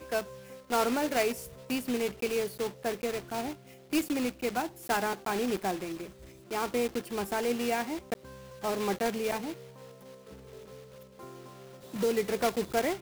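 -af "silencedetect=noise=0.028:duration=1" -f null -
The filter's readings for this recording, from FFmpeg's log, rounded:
silence_start: 9.52
silence_end: 11.94 | silence_duration: 2.42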